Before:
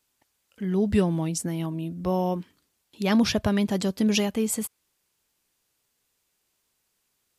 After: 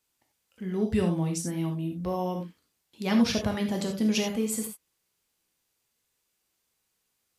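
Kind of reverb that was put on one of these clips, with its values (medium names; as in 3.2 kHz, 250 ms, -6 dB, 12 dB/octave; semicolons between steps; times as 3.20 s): gated-style reverb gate 110 ms flat, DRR 2 dB; trim -5 dB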